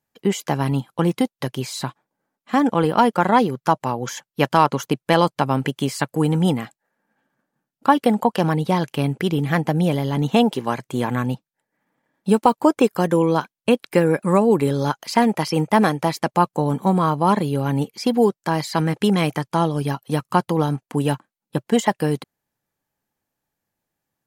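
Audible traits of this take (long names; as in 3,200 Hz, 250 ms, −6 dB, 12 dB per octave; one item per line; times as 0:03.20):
background noise floor −87 dBFS
spectral slope −6.0 dB per octave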